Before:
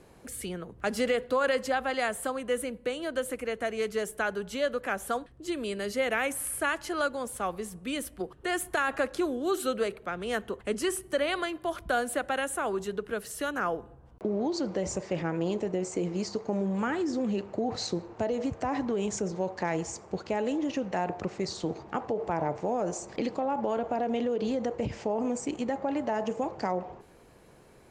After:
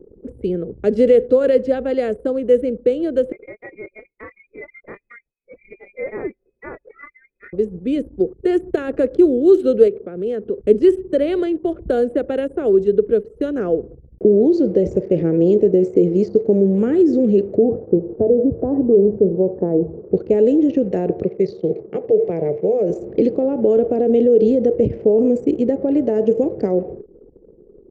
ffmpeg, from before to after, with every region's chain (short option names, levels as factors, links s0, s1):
-filter_complex "[0:a]asettb=1/sr,asplit=3[s0][s1][s2];[s0]atrim=end=3.324[s3];[s1]atrim=start=3.32:end=7.53,asetpts=PTS-STARTPTS,afade=t=in:d=0.004:c=qsin,afade=t=out:st=4.206:d=0.004:c=qsin,equalizer=f=330:t=o:w=0.65:g=-12.5,flanger=delay=18.5:depth=7.4:speed=1.6,lowpass=f=2200:t=q:w=0.5098,lowpass=f=2200:t=q:w=0.6013,lowpass=f=2200:t=q:w=0.9,lowpass=f=2200:t=q:w=2.563,afreqshift=-2600[s4];[s2]atrim=start=7.526[s5];[s3][s4]acrossfade=d=0.004:c1=hsin:c2=qsin[s6];[s6][s5]acrossfade=d=0.004:c1=qsin:c2=hsin,asettb=1/sr,asplit=3[s7][s8][s9];[s7]atrim=end=9.884[s10];[s8]atrim=start=9.88:end=10.6,asetpts=PTS-STARTPTS,afade=t=in:d=0.004:c=qsin,afade=t=out:st=0.716:d=0.004:c=qsin,highpass=90,acompressor=threshold=0.0126:ratio=2:attack=3.2:release=140:knee=1:detection=peak[s11];[s9]atrim=start=10.596[s12];[s10][s11]acrossfade=d=0.004:c1=hsin:c2=qsin[s13];[s13][s12]acrossfade=d=0.004:c1=qsin:c2=hsin,asettb=1/sr,asplit=3[s14][s15][s16];[s14]atrim=end=17.584[s17];[s15]atrim=start=17.58:end=20.08,asetpts=PTS-STARTPTS,afade=t=in:d=0.004:c=qsin,afade=t=out:st=2.496:d=0.004:c=qsin,lowpass=f=1100:w=0.5412,lowpass=f=1100:w=1.3066,bandreject=f=53.65:t=h:w=4,bandreject=f=107.3:t=h:w=4,bandreject=f=160.95:t=h:w=4,bandreject=f=214.6:t=h:w=4[s18];[s16]atrim=start=20.076[s19];[s17][s18]acrossfade=d=0.004:c1=hsin:c2=qsin[s20];[s20][s19]acrossfade=d=0.004:c1=qsin:c2=hsin,asettb=1/sr,asplit=3[s21][s22][s23];[s21]atrim=end=21.234[s24];[s22]atrim=start=21.23:end=22.9,asetpts=PTS-STARTPTS,afade=t=in:d=0.004:c=qsin,afade=t=out:st=1.666:d=0.004:c=qsin,highpass=160,equalizer=f=300:t=q:w=4:g=-9,equalizer=f=930:t=q:w=4:g=-4,equalizer=f=1400:t=q:w=4:g=-7,equalizer=f=2200:t=q:w=4:g=6,lowpass=f=6500:w=0.5412,lowpass=f=6500:w=1.3066,bandreject=f=240:w=5.4[s25];[s23]atrim=start=22.896[s26];[s24][s25]acrossfade=d=0.004:c1=hsin:c2=qsin[s27];[s27][s26]acrossfade=d=0.004:c1=qsin:c2=hsin,acrossover=split=4400[s28][s29];[s29]acompressor=threshold=0.00562:ratio=4:attack=1:release=60[s30];[s28][s30]amix=inputs=2:normalize=0,lowshelf=f=650:t=q:w=3:g=13.5,anlmdn=10,volume=0.794"